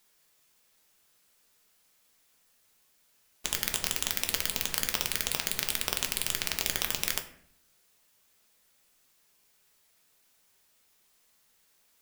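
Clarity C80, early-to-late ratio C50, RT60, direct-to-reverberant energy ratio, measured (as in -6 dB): 14.0 dB, 11.5 dB, 0.65 s, 4.0 dB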